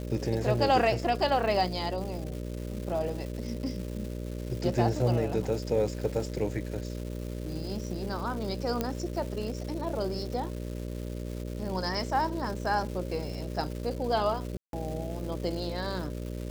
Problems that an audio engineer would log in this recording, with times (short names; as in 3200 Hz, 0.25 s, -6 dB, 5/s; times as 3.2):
buzz 60 Hz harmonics 10 -36 dBFS
crackle 520/s -38 dBFS
8.81 pop -14 dBFS
14.57–14.73 gap 0.162 s